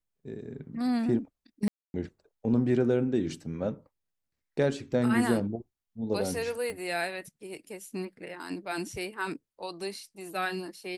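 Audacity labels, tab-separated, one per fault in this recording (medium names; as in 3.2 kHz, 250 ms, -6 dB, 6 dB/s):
1.680000	1.940000	dropout 261 ms
6.700000	6.700000	pop -24 dBFS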